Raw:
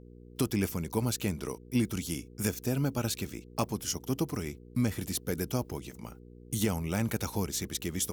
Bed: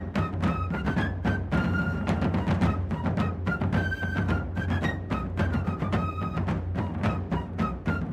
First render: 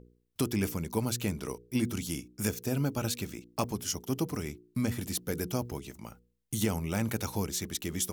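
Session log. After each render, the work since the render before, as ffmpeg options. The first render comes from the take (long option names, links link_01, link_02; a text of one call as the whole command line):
ffmpeg -i in.wav -af "bandreject=frequency=60:width_type=h:width=4,bandreject=frequency=120:width_type=h:width=4,bandreject=frequency=180:width_type=h:width=4,bandreject=frequency=240:width_type=h:width=4,bandreject=frequency=300:width_type=h:width=4,bandreject=frequency=360:width_type=h:width=4,bandreject=frequency=420:width_type=h:width=4,bandreject=frequency=480:width_type=h:width=4" out.wav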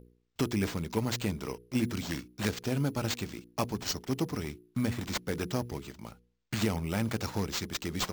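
ffmpeg -i in.wav -af "acrusher=samples=4:mix=1:aa=0.000001" out.wav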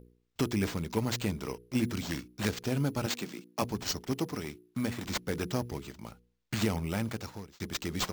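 ffmpeg -i in.wav -filter_complex "[0:a]asettb=1/sr,asplit=3[link_01][link_02][link_03];[link_01]atrim=end=3.064[link_04];[link_02]atrim=start=3.06:end=3.62,asetpts=PTS-STARTPTS,afade=type=in:duration=0.004:curve=qsin,afade=type=out:start_time=0.556:duration=0.004:curve=qsin,highpass=frequency=160:width=0.5412,highpass=frequency=160:width=1.3066[link_05];[link_03]atrim=start=3.616[link_06];[link_04][link_05]acrossfade=duration=0.004:curve1=hsin:curve2=qsin[link_07];[link_07][link_06]acrossfade=duration=0.004:curve1=qsin:curve2=hsin,asettb=1/sr,asplit=3[link_08][link_09][link_10];[link_08]atrim=end=4.124[link_11];[link_09]atrim=start=4.12:end=5.05,asetpts=PTS-STARTPTS,afade=type=in:duration=0.004:curve=qsin,afade=type=out:start_time=0.926:duration=0.004:curve=qsin,lowshelf=frequency=100:gain=-11.5[link_12];[link_10]atrim=start=5.046[link_13];[link_11][link_12]acrossfade=duration=0.004:curve1=hsin:curve2=qsin[link_14];[link_14][link_13]acrossfade=duration=0.004:curve1=qsin:curve2=hsin,asplit=2[link_15][link_16];[link_15]atrim=end=7.6,asetpts=PTS-STARTPTS,afade=type=out:start_time=6.86:duration=0.74[link_17];[link_16]atrim=start=7.6,asetpts=PTS-STARTPTS,afade=type=in:duration=0.004:curve=hsin[link_18];[link_17][link_18]concat=n=2:v=0:a=1" out.wav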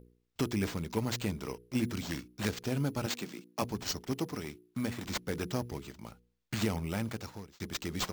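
ffmpeg -i in.wav -af "volume=-2dB" out.wav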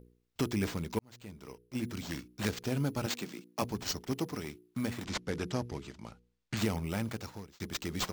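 ffmpeg -i in.wav -filter_complex "[0:a]asettb=1/sr,asplit=3[link_01][link_02][link_03];[link_01]atrim=end=5.044[link_04];[link_02]atrim=start=5.04:end=6.57,asetpts=PTS-STARTPTS,afade=type=in:duration=0.004:curve=qsin,afade=type=out:start_time=1.526:duration=0.004:curve=qsin,lowpass=8000[link_05];[link_03]atrim=start=6.566[link_06];[link_04][link_05]acrossfade=duration=0.004:curve1=hsin:curve2=qsin[link_07];[link_07][link_06]acrossfade=duration=0.004:curve1=qsin:curve2=hsin,asplit=2[link_08][link_09];[link_08]atrim=end=0.99,asetpts=PTS-STARTPTS,afade=type=out:start_time=0.986:duration=0.004:curve=hsin[link_10];[link_09]atrim=start=0.99,asetpts=PTS-STARTPTS,afade=type=in:duration=1.38[link_11];[link_10][link_11]concat=n=2:v=0:a=1" out.wav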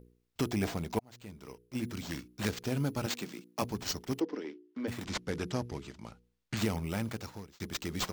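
ffmpeg -i in.wav -filter_complex "[0:a]asettb=1/sr,asplit=3[link_01][link_02][link_03];[link_01]atrim=end=0.494[link_04];[link_02]atrim=start=0.49:end=1.11,asetpts=PTS-STARTPTS,afade=type=in:duration=0.004:curve=qsin,afade=type=out:start_time=0.616:duration=0.004:curve=qsin,equalizer=frequency=710:width_type=o:width=0.38:gain=11.5[link_05];[link_03]atrim=start=1.106[link_06];[link_04][link_05]acrossfade=duration=0.004:curve1=hsin:curve2=qsin[link_07];[link_07][link_06]acrossfade=duration=0.004:curve1=qsin:curve2=hsin,asplit=3[link_08][link_09][link_10];[link_08]afade=type=out:start_time=4.19:duration=0.02[link_11];[link_09]highpass=frequency=260:width=0.5412,highpass=frequency=260:width=1.3066,equalizer=frequency=310:width_type=q:width=4:gain=6,equalizer=frequency=480:width_type=q:width=4:gain=5,equalizer=frequency=720:width_type=q:width=4:gain=-6,equalizer=frequency=1200:width_type=q:width=4:gain=-7,equalizer=frequency=2400:width_type=q:width=4:gain=-6,equalizer=frequency=3900:width_type=q:width=4:gain=-8,lowpass=frequency=4300:width=0.5412,lowpass=frequency=4300:width=1.3066,afade=type=in:start_time=4.19:duration=0.02,afade=type=out:start_time=4.87:duration=0.02[link_12];[link_10]afade=type=in:start_time=4.87:duration=0.02[link_13];[link_11][link_12][link_13]amix=inputs=3:normalize=0" out.wav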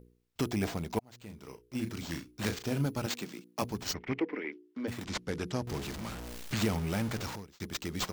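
ffmpeg -i in.wav -filter_complex "[0:a]asettb=1/sr,asplit=3[link_01][link_02][link_03];[link_01]atrim=end=1.264[link_04];[link_02]atrim=start=1.26:end=2.86,asetpts=PTS-STARTPTS,afade=type=in:duration=0.004:curve=qsin,afade=type=out:start_time=1.596:duration=0.004:curve=qsin,asplit=2[link_05][link_06];[link_06]adelay=36,volume=-8dB[link_07];[link_05][link_07]amix=inputs=2:normalize=0,atrim=end_sample=70560[link_08];[link_03]atrim=start=2.856[link_09];[link_04][link_08]acrossfade=duration=0.004:curve1=hsin:curve2=qsin[link_10];[link_10][link_09]acrossfade=duration=0.004:curve1=qsin:curve2=hsin,asplit=3[link_11][link_12][link_13];[link_11]afade=type=out:start_time=3.93:duration=0.02[link_14];[link_12]lowpass=frequency=2200:width_type=q:width=5.4,afade=type=in:start_time=3.93:duration=0.02,afade=type=out:start_time=4.51:duration=0.02[link_15];[link_13]afade=type=in:start_time=4.51:duration=0.02[link_16];[link_14][link_15][link_16]amix=inputs=3:normalize=0,asettb=1/sr,asplit=3[link_17][link_18][link_19];[link_17]atrim=end=5.674[link_20];[link_18]atrim=start=5.67:end=7.36,asetpts=PTS-STARTPTS,afade=type=in:duration=0.004:curve=qsin,afade=type=out:start_time=1.686:duration=0.004:curve=qsin,aeval=exprs='val(0)+0.5*0.0158*sgn(val(0))':channel_layout=same[link_21];[link_19]atrim=start=7.356[link_22];[link_20][link_21]acrossfade=duration=0.004:curve1=hsin:curve2=qsin[link_23];[link_23][link_22]acrossfade=duration=0.004:curve1=qsin:curve2=hsin" out.wav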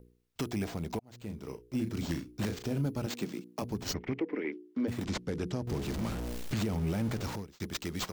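ffmpeg -i in.wav -filter_complex "[0:a]acrossover=split=640|3100[link_01][link_02][link_03];[link_01]dynaudnorm=framelen=130:gausssize=13:maxgain=7dB[link_04];[link_04][link_02][link_03]amix=inputs=3:normalize=0,alimiter=limit=-23dB:level=0:latency=1:release=199" out.wav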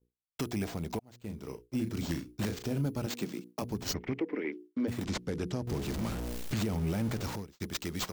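ffmpeg -i in.wav -af "agate=range=-33dB:threshold=-45dB:ratio=3:detection=peak,highshelf=frequency=7600:gain=3.5" out.wav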